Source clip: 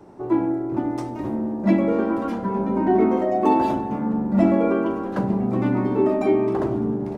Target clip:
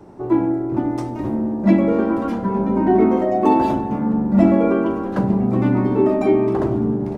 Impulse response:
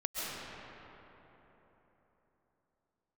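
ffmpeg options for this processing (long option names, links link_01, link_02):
-af "lowshelf=frequency=180:gain=5.5,volume=2dB"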